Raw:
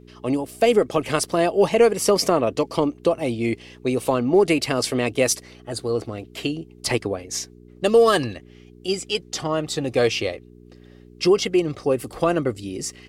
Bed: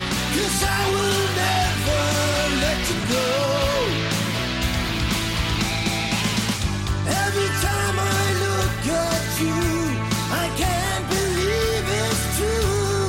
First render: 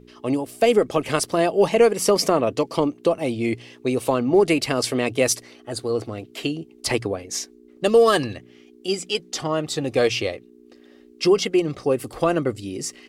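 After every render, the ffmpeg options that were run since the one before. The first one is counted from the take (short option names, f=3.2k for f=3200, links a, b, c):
-af "bandreject=f=60:t=h:w=4,bandreject=f=120:t=h:w=4,bandreject=f=180:t=h:w=4"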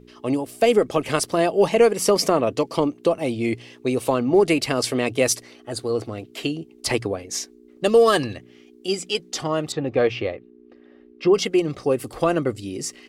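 -filter_complex "[0:a]asettb=1/sr,asplit=3[a][b][c];[a]atrim=end=9.724[d];[b]atrim=start=9.72:end=11.34,asetpts=PTS-STARTPTS,afade=t=in:d=0.004:c=qsin,afade=t=out:st=1.616:d=0.004:c=qsin,lowpass=2.2k[e];[c]atrim=start=11.336[f];[d][e]acrossfade=d=0.004:c1=hsin:c2=qsin[g];[g][f]acrossfade=d=0.004:c1=qsin:c2=hsin"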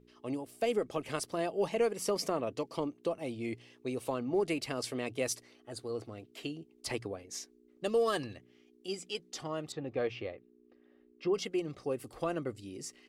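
-af "volume=-14dB"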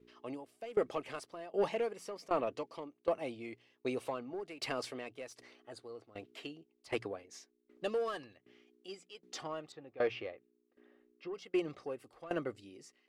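-filter_complex "[0:a]asplit=2[a][b];[b]highpass=f=720:p=1,volume=13dB,asoftclip=type=tanh:threshold=-18dB[c];[a][c]amix=inputs=2:normalize=0,lowpass=f=2.4k:p=1,volume=-6dB,aeval=exprs='val(0)*pow(10,-19*if(lt(mod(1.3*n/s,1),2*abs(1.3)/1000),1-mod(1.3*n/s,1)/(2*abs(1.3)/1000),(mod(1.3*n/s,1)-2*abs(1.3)/1000)/(1-2*abs(1.3)/1000))/20)':c=same"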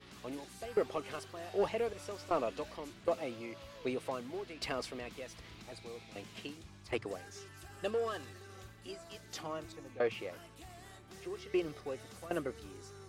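-filter_complex "[1:a]volume=-31dB[a];[0:a][a]amix=inputs=2:normalize=0"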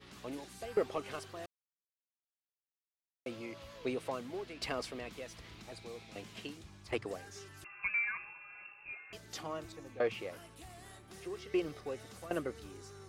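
-filter_complex "[0:a]asettb=1/sr,asplit=3[a][b][c];[a]atrim=end=7.644[d];[b]atrim=start=7.64:end=9.13,asetpts=PTS-STARTPTS,afade=t=in:d=0.004:c=qsin,afade=t=out:st=1.486:d=0.004:c=qsin,lowpass=f=2.4k:t=q:w=0.5098,lowpass=f=2.4k:t=q:w=0.6013,lowpass=f=2.4k:t=q:w=0.9,lowpass=f=2.4k:t=q:w=2.563,afreqshift=-2800[e];[c]atrim=start=9.126[f];[d][e]acrossfade=d=0.004:c1=hsin:c2=qsin[g];[g][f]acrossfade=d=0.004:c1=qsin:c2=hsin,asettb=1/sr,asplit=3[h][i][j];[h]atrim=end=10.264[k];[i]atrim=start=10.26:end=11.28,asetpts=PTS-STARTPTS,afade=t=in:d=0.004:c=qsin,afade=t=out:st=1.016:d=0.004:c=qsin,equalizer=f=10k:t=o:w=0.21:g=7.5[l];[j]atrim=start=11.276[m];[k][l]acrossfade=d=0.004:c1=hsin:c2=qsin[n];[n][m]acrossfade=d=0.004:c1=qsin:c2=hsin,asplit=3[o][p][q];[o]atrim=end=1.46,asetpts=PTS-STARTPTS,afade=t=out:st=1.456:d=0.004:c=hsin[r];[p]atrim=start=1.46:end=3.26,asetpts=PTS-STARTPTS,volume=0[s];[q]atrim=start=3.26,asetpts=PTS-STARTPTS,afade=t=in:d=0.004:c=hsin[t];[r][s][t]concat=n=3:v=0:a=1"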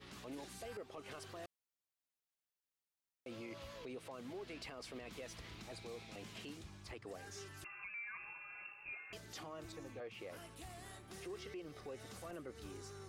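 -af "acompressor=threshold=-41dB:ratio=12,alimiter=level_in=16dB:limit=-24dB:level=0:latency=1:release=17,volume=-16dB"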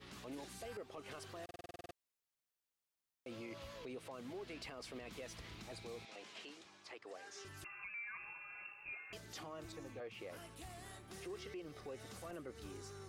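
-filter_complex "[0:a]asettb=1/sr,asplit=3[a][b][c];[a]atrim=end=6.054[d];[b]atrim=start=6.05:end=7.45,asetpts=PTS-STARTPTS,afade=t=in:d=0.004:c=qsin,afade=t=out:st=1.396:d=0.004:c=qsin,highpass=420,lowpass=7.1k[e];[c]atrim=start=7.446[f];[d][e]acrossfade=d=0.004:c1=hsin:c2=qsin[g];[g][f]acrossfade=d=0.004:c1=qsin:c2=hsin,asplit=11[h][i][j][k][l][m][n][o][p][q][r];[h]atrim=end=1.492[s];[i]atrim=start=1.438:end=1.492[t];[j]atrim=start=1.438:end=1.492[u];[k]atrim=start=1.438:end=1.492[v];[l]atrim=start=1.438:end=1.492[w];[m]atrim=start=1.438:end=1.492[x];[n]atrim=start=1.438:end=1.492[y];[o]atrim=start=1.438:end=1.492[z];[p]atrim=start=1.438:end=1.492[aa];[q]atrim=start=1.438:end=1.492[ab];[r]atrim=start=1.938[ac];[s][t]acrossfade=d=0.004:c1=hsin:c2=hsin[ad];[ad][u]acrossfade=d=0.004:c1=hsin:c2=hsin[ae];[ae][v]acrossfade=d=0.004:c1=hsin:c2=hsin[af];[af][w]acrossfade=d=0.004:c1=hsin:c2=hsin[ag];[ag][x]acrossfade=d=0.004:c1=hsin:c2=hsin[ah];[ah][y]acrossfade=d=0.004:c1=hsin:c2=hsin[ai];[ai][z]acrossfade=d=0.004:c1=hsin:c2=hsin[aj];[aj][aa]acrossfade=d=0.004:c1=hsin:c2=hsin[ak];[ak][ab]acrossfade=d=0.004:c1=hsin:c2=hsin[al];[al][ac]acrossfade=d=0.004:c1=hsin:c2=hsin"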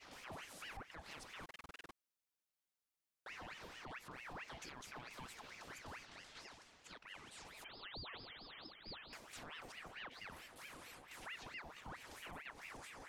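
-af "aeval=exprs='val(0)*sin(2*PI*1400*n/s+1400*0.75/4.5*sin(2*PI*4.5*n/s))':c=same"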